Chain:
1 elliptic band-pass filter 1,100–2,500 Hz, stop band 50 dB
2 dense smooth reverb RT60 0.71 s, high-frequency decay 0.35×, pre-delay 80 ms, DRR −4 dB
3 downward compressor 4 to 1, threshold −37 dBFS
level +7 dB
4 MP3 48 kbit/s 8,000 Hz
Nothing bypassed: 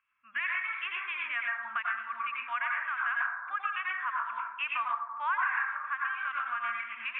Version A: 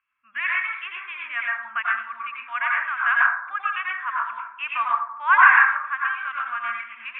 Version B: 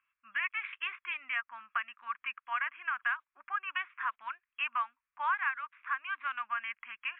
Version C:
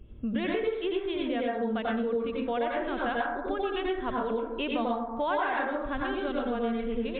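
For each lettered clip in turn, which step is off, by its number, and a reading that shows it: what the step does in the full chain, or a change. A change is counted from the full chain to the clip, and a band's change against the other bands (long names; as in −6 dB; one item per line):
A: 3, average gain reduction 6.0 dB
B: 2, change in momentary loudness spread +2 LU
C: 1, change in crest factor −1.5 dB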